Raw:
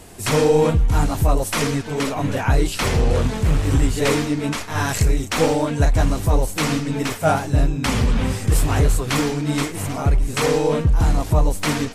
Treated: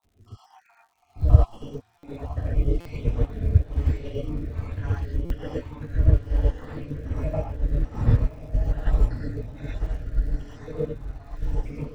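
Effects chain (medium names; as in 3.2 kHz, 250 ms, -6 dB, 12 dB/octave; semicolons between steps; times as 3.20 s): random holes in the spectrogram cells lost 76%; bass shelf 82 Hz +11.5 dB; on a send: echo that smears into a reverb 1212 ms, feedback 50%, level -5 dB; on the sum: gated-style reverb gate 150 ms rising, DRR -6.5 dB; rotary cabinet horn 1.2 Hz; tape spacing loss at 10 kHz 26 dB; crackle 170 per s -32 dBFS; buffer glitch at 1.98/2.80/5.25 s, samples 256, times 8; upward expansion 1.5:1, over -31 dBFS; trim -7.5 dB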